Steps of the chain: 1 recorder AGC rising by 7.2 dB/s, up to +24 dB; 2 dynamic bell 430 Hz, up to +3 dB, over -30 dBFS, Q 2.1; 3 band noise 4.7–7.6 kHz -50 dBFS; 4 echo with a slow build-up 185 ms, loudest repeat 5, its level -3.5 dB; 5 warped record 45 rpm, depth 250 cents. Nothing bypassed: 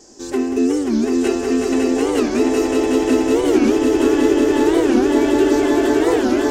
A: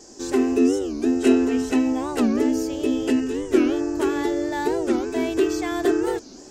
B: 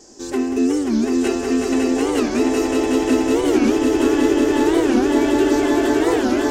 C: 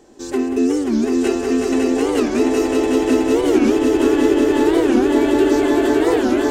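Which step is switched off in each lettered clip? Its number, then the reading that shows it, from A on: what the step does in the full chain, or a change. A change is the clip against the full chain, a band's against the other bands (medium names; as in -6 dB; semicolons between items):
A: 4, momentary loudness spread change +2 LU; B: 2, loudness change -1.5 LU; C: 3, 8 kHz band -1.5 dB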